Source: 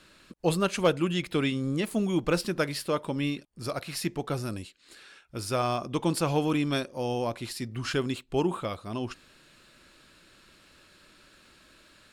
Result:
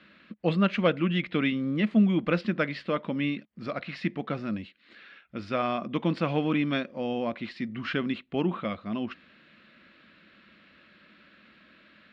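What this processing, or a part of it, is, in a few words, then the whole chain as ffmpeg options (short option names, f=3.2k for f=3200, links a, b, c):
guitar cabinet: -af "highpass=100,equalizer=f=120:t=q:w=4:g=-9,equalizer=f=210:t=q:w=4:g=9,equalizer=f=400:t=q:w=4:g=-6,equalizer=f=880:t=q:w=4:g=-7,equalizer=f=2k:t=q:w=4:g=5,lowpass=f=3.4k:w=0.5412,lowpass=f=3.4k:w=1.3066,volume=1dB"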